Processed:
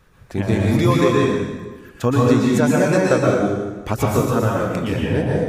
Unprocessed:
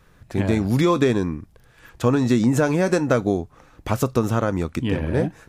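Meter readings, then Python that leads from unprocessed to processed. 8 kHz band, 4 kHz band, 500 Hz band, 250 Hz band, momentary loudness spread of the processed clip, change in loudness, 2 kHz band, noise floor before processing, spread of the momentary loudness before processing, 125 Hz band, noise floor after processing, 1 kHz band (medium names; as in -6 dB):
+4.0 dB, +3.5 dB, +4.0 dB, +2.5 dB, 10 LU, +3.0 dB, +4.0 dB, -54 dBFS, 10 LU, +3.5 dB, -45 dBFS, +4.5 dB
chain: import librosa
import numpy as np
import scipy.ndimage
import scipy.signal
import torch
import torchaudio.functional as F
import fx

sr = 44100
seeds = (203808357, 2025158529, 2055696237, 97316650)

y = fx.dereverb_blind(x, sr, rt60_s=1.7)
y = fx.rev_plate(y, sr, seeds[0], rt60_s=1.3, hf_ratio=0.9, predelay_ms=105, drr_db=-4.0)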